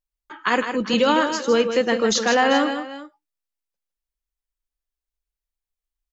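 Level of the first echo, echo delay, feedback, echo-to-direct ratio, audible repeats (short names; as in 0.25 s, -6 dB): -8.0 dB, 0.157 s, no steady repeat, -7.5 dB, 2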